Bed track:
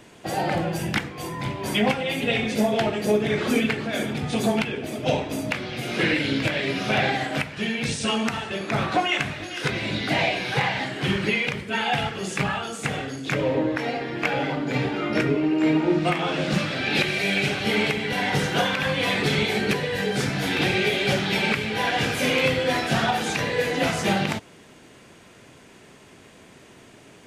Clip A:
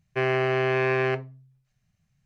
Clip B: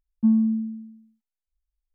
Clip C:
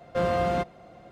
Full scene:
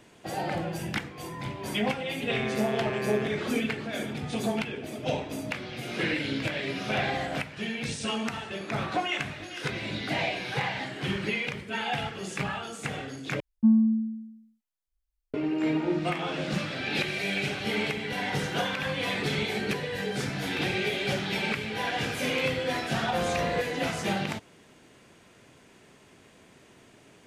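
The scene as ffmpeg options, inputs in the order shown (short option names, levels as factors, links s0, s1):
-filter_complex "[3:a]asplit=2[s0][s1];[0:a]volume=0.473,asplit=2[s2][s3];[s2]atrim=end=13.404[s4];[2:a]atrim=end=1.94,asetpts=PTS-STARTPTS,volume=0.891[s5];[s3]atrim=start=15.336[s6];[1:a]atrim=end=2.25,asetpts=PTS-STARTPTS,volume=0.335,afade=t=in:d=0.004:c=hsin,afade=t=out:st=2.246:d=0.004:c=hsin,adelay=2130[s7];[s0]atrim=end=1.11,asetpts=PTS-STARTPTS,volume=0.266,afade=t=in:d=0.004:c=hsin,afade=t=out:st=1.106:d=0.004:c=hsin,adelay=6770[s8];[s1]atrim=end=1.11,asetpts=PTS-STARTPTS,volume=0.562,afade=t=in:d=0.004:c=hsin,afade=t=out:st=1.106:d=0.004:c=hsin,adelay=22980[s9];[s4][s5]acrossfade=d=0.004:c1=hsin:c2=hsin[s10];[s10][s6]acrossfade=d=0.004:c1=hsin:c2=hsin[s11];[s11][s7][s8][s9]amix=inputs=4:normalize=0"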